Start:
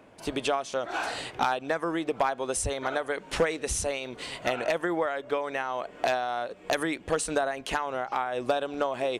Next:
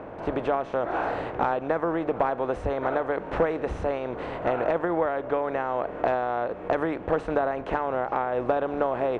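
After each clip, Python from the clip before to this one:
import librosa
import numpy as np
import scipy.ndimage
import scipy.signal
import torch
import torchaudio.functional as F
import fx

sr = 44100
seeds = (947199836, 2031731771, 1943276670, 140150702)

y = fx.bin_compress(x, sr, power=0.6)
y = scipy.signal.sosfilt(scipy.signal.butter(2, 1300.0, 'lowpass', fs=sr, output='sos'), y)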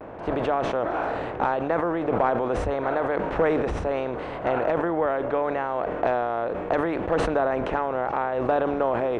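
y = fx.vibrato(x, sr, rate_hz=0.75, depth_cents=57.0)
y = fx.sustainer(y, sr, db_per_s=26.0)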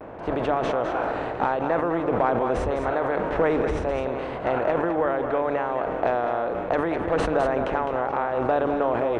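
y = x + 10.0 ** (-7.5 / 20.0) * np.pad(x, (int(208 * sr / 1000.0), 0))[:len(x)]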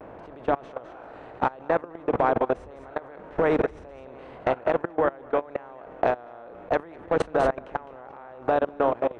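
y = fx.level_steps(x, sr, step_db=23)
y = F.gain(torch.from_numpy(y), 2.5).numpy()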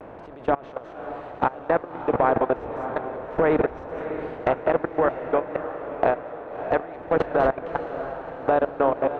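y = fx.env_lowpass_down(x, sr, base_hz=2800.0, full_db=-21.5)
y = fx.echo_diffused(y, sr, ms=619, feedback_pct=53, wet_db=-10.0)
y = F.gain(torch.from_numpy(y), 2.0).numpy()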